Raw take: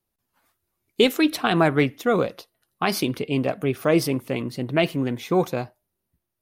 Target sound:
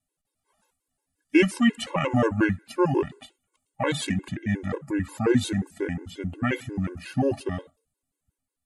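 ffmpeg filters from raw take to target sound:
-af "asetrate=32667,aresample=44100,afftfilt=real='re*gt(sin(2*PI*5.6*pts/sr)*(1-2*mod(floor(b*sr/1024/280),2)),0)':imag='im*gt(sin(2*PI*5.6*pts/sr)*(1-2*mod(floor(b*sr/1024/280),2)),0)':win_size=1024:overlap=0.75"

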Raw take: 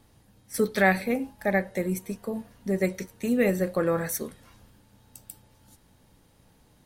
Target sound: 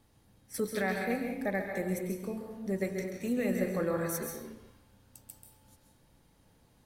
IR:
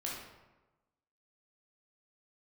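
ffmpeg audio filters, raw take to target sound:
-filter_complex "[0:a]alimiter=limit=0.168:level=0:latency=1:release=186,asplit=2[s0][s1];[1:a]atrim=start_sample=2205,afade=t=out:st=0.38:d=0.01,atrim=end_sample=17199,adelay=134[s2];[s1][s2]afir=irnorm=-1:irlink=0,volume=0.631[s3];[s0][s3]amix=inputs=2:normalize=0,volume=0.473"

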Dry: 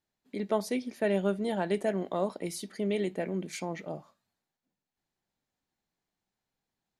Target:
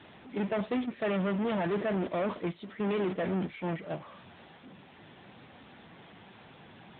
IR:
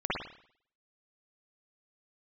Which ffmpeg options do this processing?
-filter_complex "[0:a]aeval=exprs='val(0)+0.5*0.0178*sgn(val(0))':c=same,agate=range=0.282:threshold=0.0251:ratio=16:detection=peak,asettb=1/sr,asplit=3[s0][s1][s2];[s0]atrim=end=0.894[s3];[s1]atrim=start=0.89:end=3.07,asetpts=PTS-STARTPTS,afade=t=in:d=0.004:c=qsin,afade=t=out:st=2.176:d=0.004:c=qsin,bandreject=f=800:w=12[s4];[s2]atrim=start=3.066[s5];[s3][s4]acrossfade=d=0.004:c1=hsin:c2=qsin[s6];[s6][s5]acrossfade=d=0.004:c1=qsin:c2=hsin,asoftclip=type=tanh:threshold=0.0282,volume=1.68" -ar 8000 -c:a libopencore_amrnb -b:a 10200

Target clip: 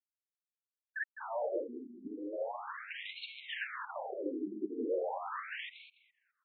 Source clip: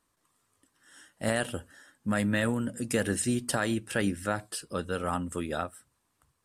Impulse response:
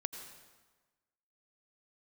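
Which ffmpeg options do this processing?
-filter_complex "[0:a]afftfilt=real='re*gte(hypot(re,im),0.0112)':imag='im*gte(hypot(re,im),0.0112)':win_size=1024:overlap=0.75,equalizer=f=340:t=o:w=2.1:g=5,acontrast=65,asplit=2[s0][s1];[s1]highpass=f=720:p=1,volume=39.8,asoftclip=type=tanh:threshold=0.0668[s2];[s0][s2]amix=inputs=2:normalize=0,lowpass=f=1300:p=1,volume=0.501,asoftclip=type=tanh:threshold=0.0106,asplit=2[s3][s4];[s4]adelay=207,lowpass=f=1700:p=1,volume=0.501,asplit=2[s5][s6];[s6]adelay=207,lowpass=f=1700:p=1,volume=0.33,asplit=2[s7][s8];[s8]adelay=207,lowpass=f=1700:p=1,volume=0.33,asplit=2[s9][s10];[s10]adelay=207,lowpass=f=1700:p=1,volume=0.33[s11];[s5][s7][s9][s11]amix=inputs=4:normalize=0[s12];[s3][s12]amix=inputs=2:normalize=0,afftfilt=real='re*between(b*sr/1024,290*pow(3100/290,0.5+0.5*sin(2*PI*0.38*pts/sr))/1.41,290*pow(3100/290,0.5+0.5*sin(2*PI*0.38*pts/sr))*1.41)':imag='im*between(b*sr/1024,290*pow(3100/290,0.5+0.5*sin(2*PI*0.38*pts/sr))/1.41,290*pow(3100/290,0.5+0.5*sin(2*PI*0.38*pts/sr))*1.41)':win_size=1024:overlap=0.75,volume=2.66"

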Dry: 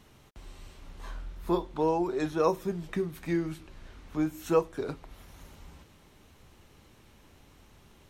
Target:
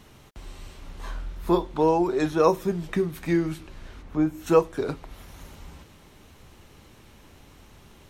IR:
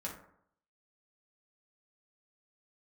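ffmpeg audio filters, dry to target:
-filter_complex "[0:a]asplit=3[s0][s1][s2];[s0]afade=t=out:st=4.01:d=0.02[s3];[s1]highshelf=f=2000:g=-10,afade=t=in:st=4.01:d=0.02,afade=t=out:st=4.46:d=0.02[s4];[s2]afade=t=in:st=4.46:d=0.02[s5];[s3][s4][s5]amix=inputs=3:normalize=0,volume=2"

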